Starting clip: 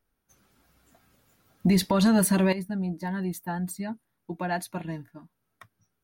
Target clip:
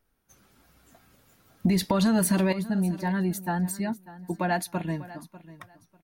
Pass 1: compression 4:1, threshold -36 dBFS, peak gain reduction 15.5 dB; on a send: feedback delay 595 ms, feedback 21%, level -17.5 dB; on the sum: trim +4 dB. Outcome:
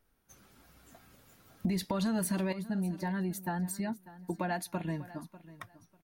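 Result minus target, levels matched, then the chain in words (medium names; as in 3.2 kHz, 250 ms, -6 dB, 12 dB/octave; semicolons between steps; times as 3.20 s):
compression: peak gain reduction +8.5 dB
compression 4:1, threshold -24.5 dBFS, peak gain reduction 7 dB; on a send: feedback delay 595 ms, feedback 21%, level -17.5 dB; on the sum: trim +4 dB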